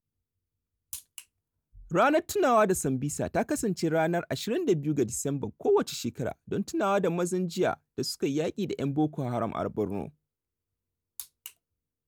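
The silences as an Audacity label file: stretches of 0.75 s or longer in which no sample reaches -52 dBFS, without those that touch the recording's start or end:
10.100000	11.190000	silence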